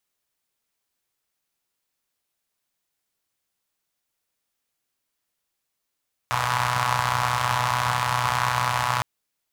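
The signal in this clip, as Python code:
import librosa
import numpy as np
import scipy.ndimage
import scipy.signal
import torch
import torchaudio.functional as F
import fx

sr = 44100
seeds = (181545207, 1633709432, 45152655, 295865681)

y = fx.engine_four(sr, seeds[0], length_s=2.71, rpm=3700, resonances_hz=(110.0, 1000.0))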